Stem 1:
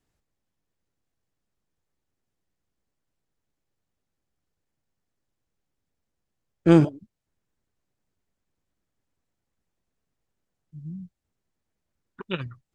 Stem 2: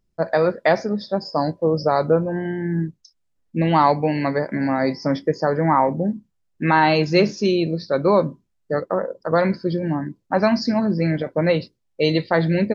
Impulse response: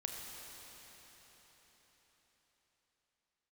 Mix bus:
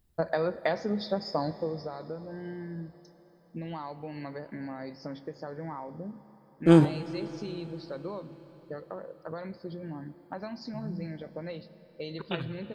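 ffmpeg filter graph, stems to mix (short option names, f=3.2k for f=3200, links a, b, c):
-filter_complex "[0:a]dynaudnorm=f=530:g=9:m=3dB,volume=-6.5dB,asplit=2[a][b];[b]volume=-5.5dB[c];[1:a]equalizer=f=68:w=2.5:g=12.5,acompressor=threshold=-24dB:ratio=6,volume=-3dB,afade=t=out:st=1.34:d=0.57:silence=0.298538,asplit=2[d][e];[e]volume=-10dB[f];[2:a]atrim=start_sample=2205[g];[c][f]amix=inputs=2:normalize=0[h];[h][g]afir=irnorm=-1:irlink=0[i];[a][d][i]amix=inputs=3:normalize=0,aexciter=amount=1.8:drive=5.9:freq=3.3k,equalizer=f=6.1k:w=0.91:g=-6"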